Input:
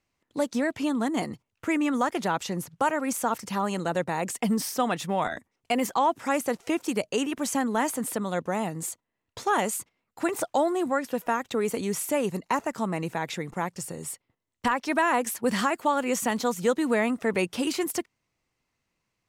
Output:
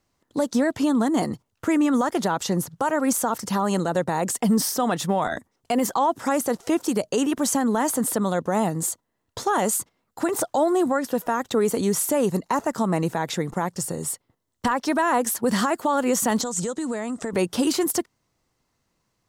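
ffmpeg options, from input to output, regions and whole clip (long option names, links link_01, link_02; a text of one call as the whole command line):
ffmpeg -i in.wav -filter_complex "[0:a]asettb=1/sr,asplit=3[link_01][link_02][link_03];[link_01]atrim=end=16.414[link_04];[link_02]atrim=start=16.41:end=17.33,asetpts=PTS-STARTPTS,afade=type=in:duration=0.004:curve=qsin,afade=type=out:start_time=0.916:duration=0.004:curve=qsin,acompressor=threshold=-32dB:ratio=8:attack=3.2:release=140:knee=1:detection=peak,lowpass=frequency=7700:width_type=q:width=3.8[link_05];[link_03]atrim=start=17.326[link_06];[link_04][link_05]acrossfade=duration=0.004:curve1=hsin:curve2=qsin[link_07];[link_07][link_06]acrossfade=duration=0.004:curve1=qsin:curve2=hsin,equalizer=frequency=2400:width_type=o:width=0.7:gain=-9,alimiter=limit=-20.5dB:level=0:latency=1:release=67,volume=7.5dB" out.wav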